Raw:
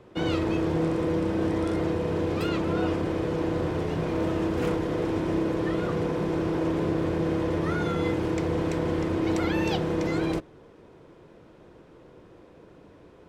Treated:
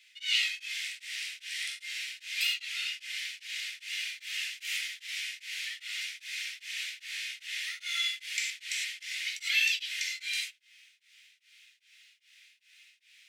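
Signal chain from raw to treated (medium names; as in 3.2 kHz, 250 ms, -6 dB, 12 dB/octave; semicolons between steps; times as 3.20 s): steep high-pass 2.1 kHz 48 dB/octave; gated-style reverb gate 130 ms flat, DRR -3.5 dB; tremolo of two beating tones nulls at 2.5 Hz; trim +8.5 dB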